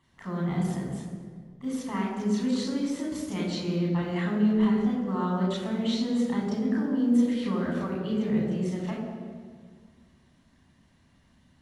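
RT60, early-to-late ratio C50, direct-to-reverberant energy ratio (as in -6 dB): 1.8 s, 2.0 dB, -3.5 dB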